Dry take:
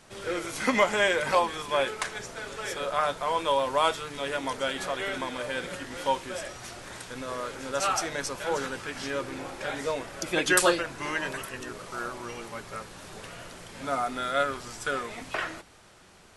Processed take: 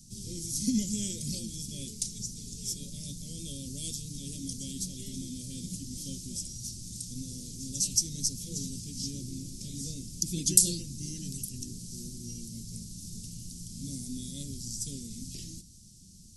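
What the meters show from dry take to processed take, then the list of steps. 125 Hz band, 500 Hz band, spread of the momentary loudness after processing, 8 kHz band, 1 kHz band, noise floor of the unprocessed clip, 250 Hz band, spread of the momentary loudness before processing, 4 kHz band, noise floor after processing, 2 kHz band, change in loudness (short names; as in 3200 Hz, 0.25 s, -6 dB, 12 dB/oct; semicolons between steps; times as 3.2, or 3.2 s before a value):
+6.5 dB, -23.0 dB, 13 LU, +6.5 dB, under -40 dB, -54 dBFS, -0.5 dB, 15 LU, -4.0 dB, -52 dBFS, under -30 dB, -4.5 dB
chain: elliptic band-stop 210–5400 Hz, stop band 80 dB; gain +7 dB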